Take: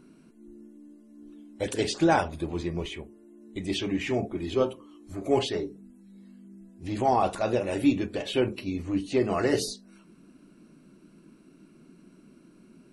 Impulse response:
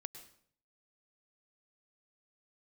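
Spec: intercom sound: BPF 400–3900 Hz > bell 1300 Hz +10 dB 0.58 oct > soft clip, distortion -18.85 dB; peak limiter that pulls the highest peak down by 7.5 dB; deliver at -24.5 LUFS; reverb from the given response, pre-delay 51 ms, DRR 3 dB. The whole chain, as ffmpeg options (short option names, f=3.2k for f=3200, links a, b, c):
-filter_complex "[0:a]alimiter=limit=-19dB:level=0:latency=1,asplit=2[a][b];[1:a]atrim=start_sample=2205,adelay=51[c];[b][c]afir=irnorm=-1:irlink=0,volume=1dB[d];[a][d]amix=inputs=2:normalize=0,highpass=400,lowpass=3.9k,equalizer=f=1.3k:t=o:w=0.58:g=10,asoftclip=threshold=-19dB,volume=7.5dB"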